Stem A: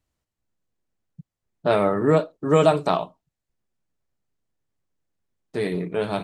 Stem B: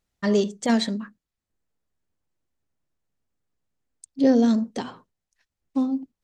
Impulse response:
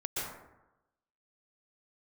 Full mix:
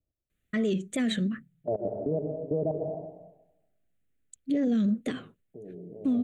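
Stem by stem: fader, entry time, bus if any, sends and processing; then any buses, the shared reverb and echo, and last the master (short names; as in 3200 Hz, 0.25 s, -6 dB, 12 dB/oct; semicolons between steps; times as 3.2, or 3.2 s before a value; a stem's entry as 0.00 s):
-6.0 dB, 0.00 s, send -8 dB, steep low-pass 700 Hz 48 dB/oct; level quantiser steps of 20 dB
+2.0 dB, 0.30 s, no send, wow and flutter 140 cents; fixed phaser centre 2200 Hz, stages 4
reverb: on, RT60 0.95 s, pre-delay 0.113 s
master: limiter -20 dBFS, peak gain reduction 11 dB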